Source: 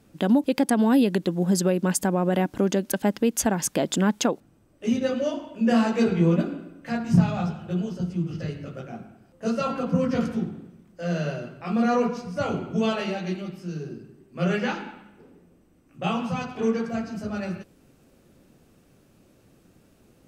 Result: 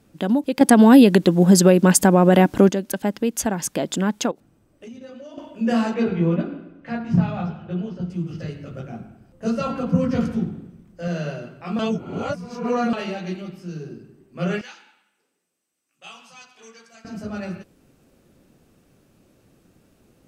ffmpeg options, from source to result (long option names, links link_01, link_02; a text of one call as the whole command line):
ffmpeg -i in.wav -filter_complex "[0:a]asettb=1/sr,asplit=3[link_01][link_02][link_03];[link_01]atrim=end=4.314[link_04];[link_02]atrim=start=4.31:end=5.38,asetpts=PTS-STARTPTS,afade=type=in:duration=0.004:curve=qsin,afade=type=out:start_time=1.066:duration=0.004:curve=qsin,acompressor=threshold=-38dB:ratio=5:attack=3.2:release=140:knee=1:detection=peak[link_05];[link_03]atrim=start=5.376[link_06];[link_04][link_05]acrossfade=duration=0.004:curve1=hsin:curve2=qsin[link_07];[link_07][link_06]acrossfade=duration=0.004:curve1=qsin:curve2=hsin,asettb=1/sr,asplit=3[link_08][link_09][link_10];[link_08]atrim=end=5.944[link_11];[link_09]atrim=start=5.94:end=8.1,asetpts=PTS-STARTPTS,afade=type=in:duration=0.004:curve=qsin,afade=type=out:start_time=2.156:duration=0.004:curve=qsin,lowpass=3400[link_12];[link_10]atrim=start=8.096[link_13];[link_11][link_12]acrossfade=duration=0.004:curve1=hsin:curve2=qsin[link_14];[link_14][link_13]acrossfade=duration=0.004:curve1=qsin:curve2=hsin,asettb=1/sr,asplit=3[link_15][link_16][link_17];[link_15]atrim=end=8.714[link_18];[link_16]atrim=start=8.71:end=11.08,asetpts=PTS-STARTPTS,afade=type=in:duration=0.004:curve=qsin,afade=type=out:start_time=2.366:duration=0.004:curve=qsin,lowshelf=frequency=150:gain=10.5[link_19];[link_17]atrim=start=11.076[link_20];[link_18][link_19]acrossfade=duration=0.004:curve1=hsin:curve2=qsin[link_21];[link_21][link_20]acrossfade=duration=0.004:curve1=qsin:curve2=hsin,asettb=1/sr,asplit=3[link_22][link_23][link_24];[link_22]atrim=end=14.614[link_25];[link_23]atrim=start=14.61:end=17.05,asetpts=PTS-STARTPTS,afade=type=in:duration=0.004:curve=qsin,afade=type=out:start_time=2.436:duration=0.004:curve=qsin,bandpass=frequency=7900:width_type=q:width=0.7[link_26];[link_24]atrim=start=17.046[link_27];[link_25][link_26]acrossfade=duration=0.004:curve1=hsin:curve2=qsin[link_28];[link_28][link_27]acrossfade=duration=0.004:curve1=qsin:curve2=hsin,asplit=5[link_29][link_30][link_31][link_32][link_33];[link_29]atrim=end=0.612[link_34];[link_30]atrim=start=0.608:end=2.692,asetpts=PTS-STARTPTS,volume=9dB[link_35];[link_31]atrim=start=2.688:end=11.792[link_36];[link_32]atrim=start=11.788:end=12.932,asetpts=PTS-STARTPTS,areverse[link_37];[link_33]atrim=start=12.928[link_38];[link_34][link_35]acrossfade=duration=0.004:curve1=hsin:curve2=hsin[link_39];[link_39][link_36]acrossfade=duration=0.004:curve1=hsin:curve2=hsin[link_40];[link_40][link_37]acrossfade=duration=0.004:curve1=hsin:curve2=hsin[link_41];[link_41][link_38]acrossfade=duration=0.004:curve1=hsin:curve2=hsin" out.wav